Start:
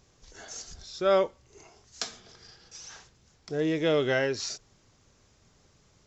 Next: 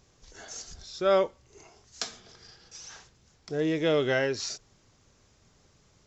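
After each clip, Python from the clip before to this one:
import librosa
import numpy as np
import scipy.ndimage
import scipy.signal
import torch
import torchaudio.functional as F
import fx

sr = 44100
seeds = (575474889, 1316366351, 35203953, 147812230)

y = x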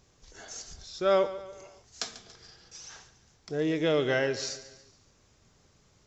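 y = fx.echo_feedback(x, sr, ms=142, feedback_pct=48, wet_db=-15.0)
y = y * librosa.db_to_amplitude(-1.0)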